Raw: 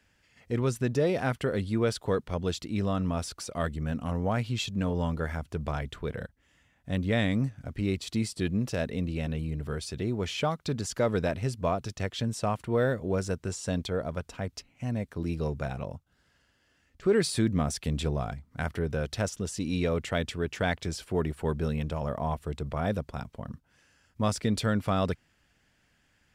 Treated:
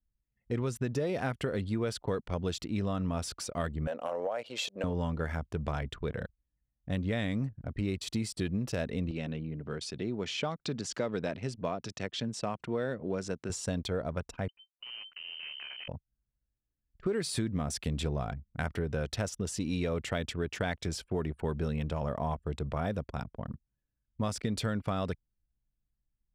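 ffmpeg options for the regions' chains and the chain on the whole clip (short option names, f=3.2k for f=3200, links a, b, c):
-filter_complex "[0:a]asettb=1/sr,asplit=3[a][b][c];[a]atrim=end=3.874[d];[b]atrim=start=3.87:end=4.84,asetpts=PTS-STARTPTS,afade=t=in:d=0.004:c=qsin,afade=t=out:st=0.966:d=0.004:c=qsin,highpass=f=550:t=q:w=4.4,acompressor=threshold=-28dB:ratio=6:attack=3.2:release=140:knee=1:detection=peak[e];[c]atrim=start=4.836[f];[d][e]acrossfade=d=0.004:c1=hsin:c2=qsin[g];[g][f]acrossfade=d=0.004:c1=qsin:c2=hsin,asettb=1/sr,asplit=3[h][i][j];[h]atrim=end=9.114[k];[i]atrim=start=9.11:end=13.5,asetpts=PTS-STARTPTS,afade=t=in:d=0.004:c=qsin,afade=t=out:st=4.386:d=0.004:c=qsin,equalizer=f=900:w=0.42:g=-3.5,acompressor=mode=upward:threshold=-32dB:ratio=2.5:attack=3.2:release=140:knee=2.83:detection=peak,highpass=170,lowpass=6.7k[l];[j]atrim=start=13.496[m];[k][l]acrossfade=d=0.004:c1=hsin:c2=qsin[n];[n][m]acrossfade=d=0.004:c1=qsin:c2=hsin,asettb=1/sr,asplit=3[o][p][q];[o]atrim=end=14.484[r];[p]atrim=start=14.48:end=15.88,asetpts=PTS-STARTPTS,afade=t=in:d=0.004:c=qsin,afade=t=out:st=1.396:d=0.004:c=qsin,acompressor=threshold=-36dB:ratio=8:attack=3.2:release=140:knee=1:detection=peak,acrusher=bits=5:dc=4:mix=0:aa=0.000001,lowpass=f=2.6k:t=q:w=0.5098,lowpass=f=2.6k:t=q:w=0.6013,lowpass=f=2.6k:t=q:w=0.9,lowpass=f=2.6k:t=q:w=2.563,afreqshift=-3100[s];[q]atrim=start=15.876[t];[r][s]acrossfade=d=0.004:c1=hsin:c2=qsin[u];[u][t]acrossfade=d=0.004:c1=qsin:c2=hsin,anlmdn=0.0398,acompressor=threshold=-28dB:ratio=6"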